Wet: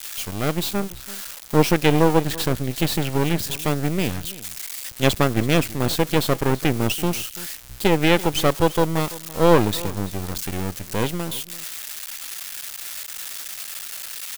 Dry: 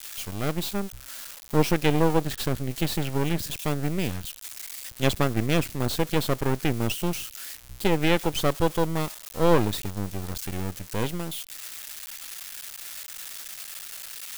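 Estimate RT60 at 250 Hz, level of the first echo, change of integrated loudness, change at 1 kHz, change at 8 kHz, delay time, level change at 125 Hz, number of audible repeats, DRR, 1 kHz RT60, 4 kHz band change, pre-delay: none, -18.5 dB, +5.0 dB, +5.5 dB, +5.5 dB, 0.335 s, +4.0 dB, 1, none, none, +5.5 dB, none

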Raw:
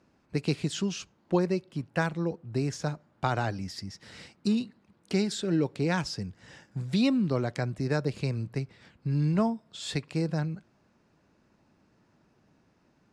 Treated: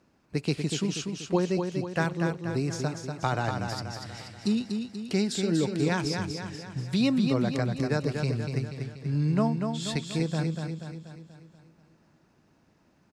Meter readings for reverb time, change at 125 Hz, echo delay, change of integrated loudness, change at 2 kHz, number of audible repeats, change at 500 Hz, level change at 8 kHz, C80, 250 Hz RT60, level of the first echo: none, +1.5 dB, 0.241 s, +1.5 dB, +1.5 dB, 6, +1.5 dB, +3.5 dB, none, none, -5.5 dB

